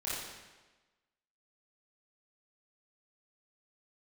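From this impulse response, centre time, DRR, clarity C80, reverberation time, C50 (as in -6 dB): 90 ms, -9.5 dB, 1.5 dB, 1.2 s, -2.5 dB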